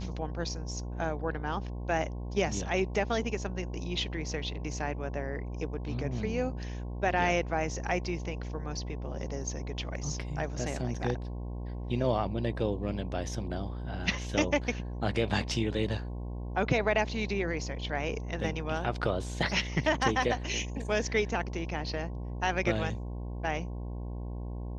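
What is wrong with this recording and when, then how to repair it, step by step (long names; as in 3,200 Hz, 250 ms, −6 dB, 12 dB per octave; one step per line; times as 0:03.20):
mains buzz 60 Hz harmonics 18 −37 dBFS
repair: hum removal 60 Hz, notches 18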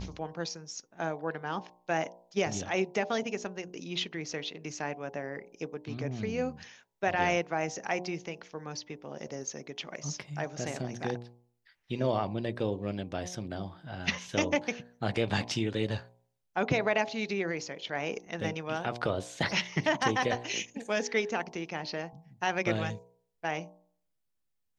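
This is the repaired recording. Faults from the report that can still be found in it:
none of them is left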